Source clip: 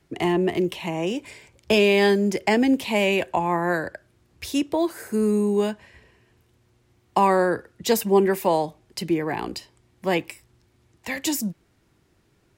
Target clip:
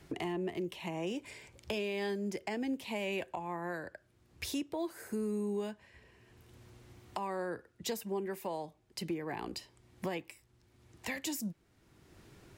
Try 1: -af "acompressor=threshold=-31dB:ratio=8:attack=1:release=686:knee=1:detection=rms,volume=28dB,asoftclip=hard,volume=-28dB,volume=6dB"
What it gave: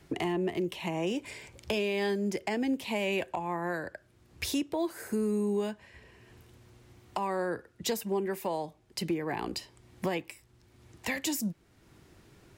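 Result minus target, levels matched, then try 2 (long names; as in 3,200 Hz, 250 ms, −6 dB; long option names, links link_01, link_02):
downward compressor: peak gain reduction −5.5 dB
-af "acompressor=threshold=-37.5dB:ratio=8:attack=1:release=686:knee=1:detection=rms,volume=28dB,asoftclip=hard,volume=-28dB,volume=6dB"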